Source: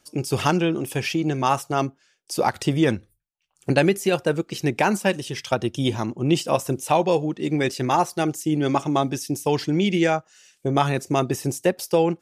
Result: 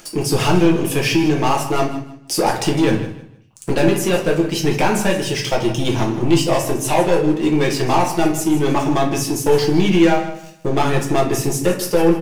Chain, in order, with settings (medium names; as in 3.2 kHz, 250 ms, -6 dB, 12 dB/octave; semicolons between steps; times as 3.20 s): bass shelf 130 Hz -5 dB; in parallel at +2 dB: compression, threshold -27 dBFS, peak gain reduction 13 dB; on the sum: waveshaping leveller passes 3; upward compressor, threshold -19 dBFS; on a send: feedback delay 156 ms, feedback 25%, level -13 dB; on the sum: simulated room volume 36 m³, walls mixed, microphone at 0.64 m; trim -10.5 dB